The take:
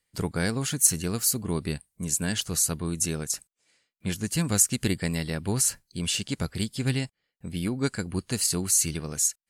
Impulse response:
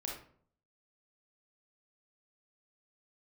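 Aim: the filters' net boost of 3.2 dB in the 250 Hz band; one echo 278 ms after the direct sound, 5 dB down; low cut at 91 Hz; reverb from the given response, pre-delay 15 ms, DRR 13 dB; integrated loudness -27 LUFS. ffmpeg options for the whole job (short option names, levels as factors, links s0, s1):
-filter_complex "[0:a]highpass=91,equalizer=f=250:t=o:g=4.5,aecho=1:1:278:0.562,asplit=2[s0][s1];[1:a]atrim=start_sample=2205,adelay=15[s2];[s1][s2]afir=irnorm=-1:irlink=0,volume=0.224[s3];[s0][s3]amix=inputs=2:normalize=0,volume=0.75"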